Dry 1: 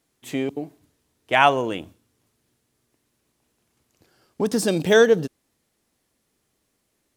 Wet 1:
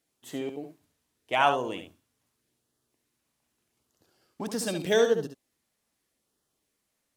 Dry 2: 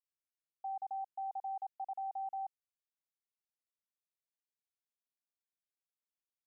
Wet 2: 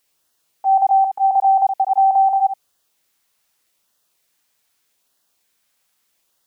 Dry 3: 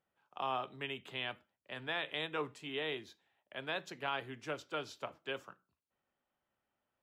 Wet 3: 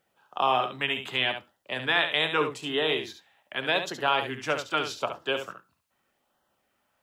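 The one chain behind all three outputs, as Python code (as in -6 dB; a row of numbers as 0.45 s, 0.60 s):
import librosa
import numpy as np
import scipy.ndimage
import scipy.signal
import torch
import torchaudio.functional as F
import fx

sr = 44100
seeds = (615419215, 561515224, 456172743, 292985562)

p1 = fx.low_shelf(x, sr, hz=270.0, db=-6.0)
p2 = fx.filter_lfo_notch(p1, sr, shape='sine', hz=0.82, low_hz=340.0, high_hz=2400.0, q=2.7)
p3 = p2 + fx.echo_single(p2, sr, ms=70, db=-8.0, dry=0)
y = p3 * 10.0 ** (-9 / 20.0) / np.max(np.abs(p3))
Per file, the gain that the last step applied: -6.0 dB, +27.5 dB, +14.0 dB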